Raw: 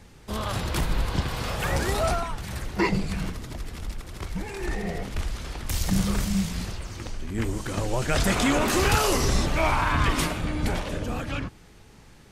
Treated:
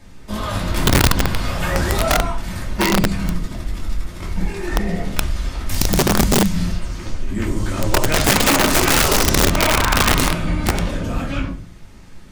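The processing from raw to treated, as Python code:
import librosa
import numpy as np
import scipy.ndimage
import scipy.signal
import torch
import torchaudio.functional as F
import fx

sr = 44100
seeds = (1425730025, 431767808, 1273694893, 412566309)

y = fx.room_shoebox(x, sr, seeds[0], volume_m3=240.0, walls='furnished', distance_m=2.7)
y = (np.mod(10.0 ** (8.5 / 20.0) * y + 1.0, 2.0) - 1.0) / 10.0 ** (8.5 / 20.0)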